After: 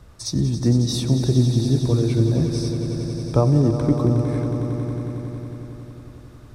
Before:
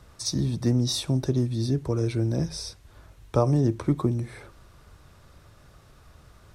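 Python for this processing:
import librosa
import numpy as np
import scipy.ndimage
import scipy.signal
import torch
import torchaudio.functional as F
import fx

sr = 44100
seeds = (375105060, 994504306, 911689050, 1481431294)

p1 = fx.low_shelf(x, sr, hz=470.0, db=6.0)
y = p1 + fx.echo_swell(p1, sr, ms=91, loudest=5, wet_db=-12.0, dry=0)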